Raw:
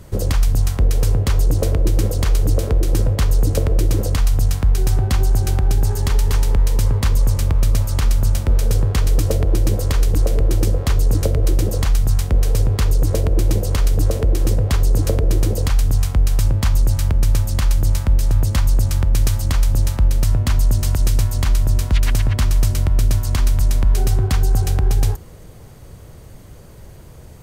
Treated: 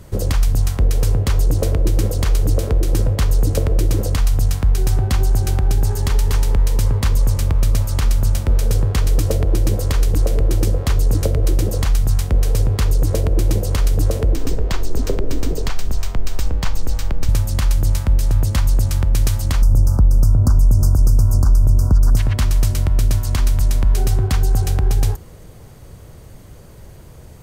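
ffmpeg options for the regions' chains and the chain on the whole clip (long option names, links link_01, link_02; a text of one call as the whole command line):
ffmpeg -i in.wav -filter_complex "[0:a]asettb=1/sr,asplit=3[link_01][link_02][link_03];[link_01]atrim=end=14.354[link_04];[link_02]atrim=start=14.35:end=17.29,asetpts=PTS-STARTPTS,afade=type=in:duration=0.004:curve=qsin,afade=type=out:start_time=2.936:duration=0.004:curve=qsin,equalizer=frequency=11000:width=2.1:gain=-15,afreqshift=-51[link_05];[link_03]atrim=start=17.286[link_06];[link_04][link_05]acrossfade=duration=0.004:curve1=hsin:curve2=qsin[link_07];[link_07][link_06]acrossfade=duration=0.004:curve1=qsin:curve2=hsin,asettb=1/sr,asplit=3[link_08][link_09][link_10];[link_08]atrim=end=19.624[link_11];[link_09]atrim=start=19.62:end=22.17,asetpts=PTS-STARTPTS,afade=type=in:duration=0.004:curve=qsin,afade=type=out:start_time=2.546:duration=0.004:curve=qsin,lowshelf=frequency=370:gain=8,acompressor=threshold=-9dB:ratio=3:attack=3.2:release=140:knee=1:detection=peak,asuperstop=centerf=2700:order=12:qfactor=0.8[link_12];[link_10]atrim=start=22.166[link_13];[link_11][link_12]acrossfade=duration=0.004:curve1=hsin:curve2=qsin[link_14];[link_14][link_13]acrossfade=duration=0.004:curve1=qsin:curve2=hsin" out.wav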